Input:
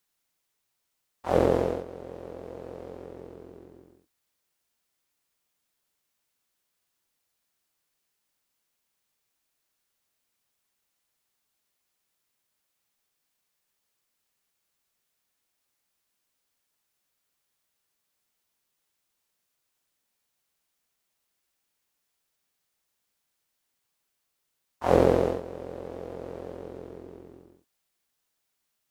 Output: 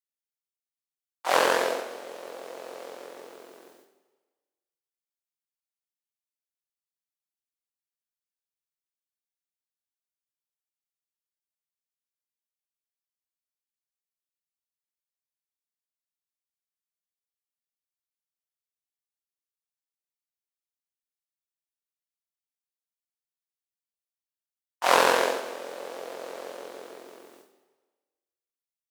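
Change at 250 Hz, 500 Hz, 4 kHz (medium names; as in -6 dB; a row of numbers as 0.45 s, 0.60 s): -9.5 dB, -2.5 dB, +15.5 dB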